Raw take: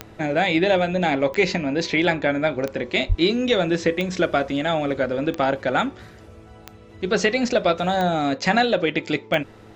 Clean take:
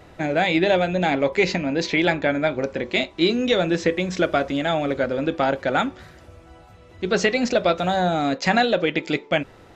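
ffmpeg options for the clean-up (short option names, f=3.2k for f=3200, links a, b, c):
-filter_complex "[0:a]adeclick=t=4,bandreject=f=108.5:t=h:w=4,bandreject=f=217:t=h:w=4,bandreject=f=325.5:t=h:w=4,bandreject=f=434:t=h:w=4,asplit=3[a][b][c];[a]afade=t=out:st=3.08:d=0.02[d];[b]highpass=f=140:w=0.5412,highpass=f=140:w=1.3066,afade=t=in:st=3.08:d=0.02,afade=t=out:st=3.2:d=0.02[e];[c]afade=t=in:st=3.2:d=0.02[f];[d][e][f]amix=inputs=3:normalize=0"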